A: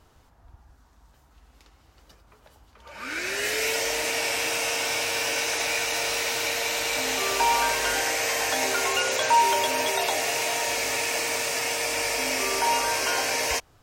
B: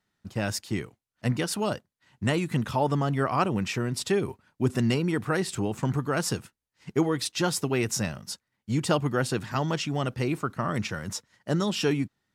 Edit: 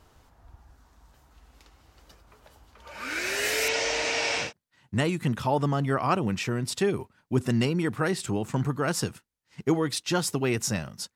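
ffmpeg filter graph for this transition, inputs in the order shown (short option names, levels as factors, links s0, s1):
-filter_complex "[0:a]asettb=1/sr,asplit=3[s0][s1][s2];[s0]atrim=end=3.684[s3];[s1]atrim=start=3.68:end=4.53,asetpts=PTS-STARTPTS,afade=t=in:d=0.004:c=qsin,afade=t=out:st=0.846:d=0.004:c=qsin,lowpass=f=6500:w=0.5412,lowpass=f=6500:w=1.3066[s4];[s2]atrim=start=4.526[s5];[s3][s4]acrossfade=d=0.004:c1=hsin:c2=qsin[s6];[s6][s5]acrossfade=d=0.004:c1=qsin:c2=hsin,apad=whole_dur=11.15,atrim=end=11.15,atrim=end=4.53,asetpts=PTS-STARTPTS[s7];[1:a]atrim=start=1.66:end=8.44,asetpts=PTS-STARTPTS[s8];[s7][s8]acrossfade=d=0.16:c1=tri:c2=tri"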